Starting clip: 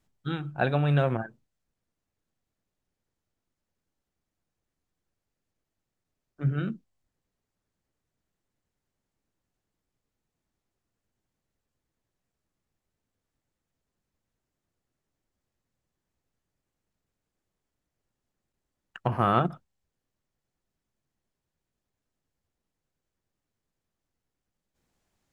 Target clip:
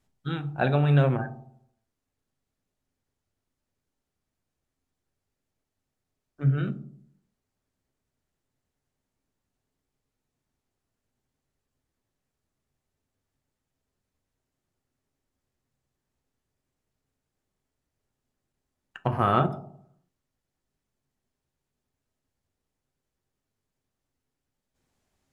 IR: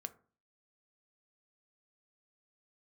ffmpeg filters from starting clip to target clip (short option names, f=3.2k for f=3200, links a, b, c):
-filter_complex "[1:a]atrim=start_sample=2205,asetrate=25137,aresample=44100[a];[0:a][a]afir=irnorm=-1:irlink=0,volume=1.5dB"